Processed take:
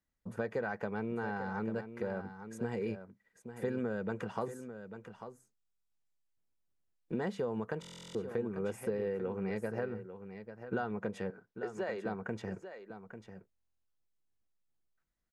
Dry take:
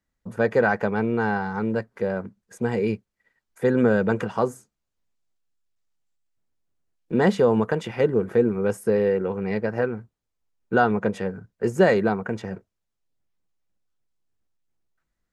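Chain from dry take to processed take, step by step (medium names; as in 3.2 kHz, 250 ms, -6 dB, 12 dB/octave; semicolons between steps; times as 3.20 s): compression 5:1, threshold -25 dBFS, peak gain reduction 12 dB; 11.30–12.06 s: band-pass 390–5600 Hz; delay 844 ms -10.5 dB; buffer glitch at 5.57/7.80/13.51 s, samples 1024, times 14; trim -7.5 dB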